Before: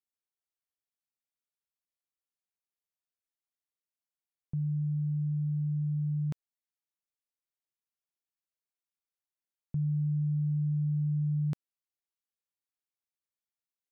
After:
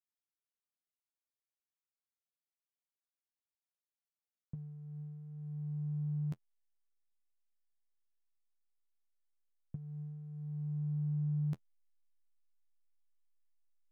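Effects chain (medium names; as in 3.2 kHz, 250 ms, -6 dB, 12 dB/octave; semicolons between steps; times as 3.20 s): flange 0.2 Hz, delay 9.7 ms, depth 3.9 ms, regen -29%; in parallel at -3 dB: hysteresis with a dead band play -46 dBFS; on the sum: trim -6 dB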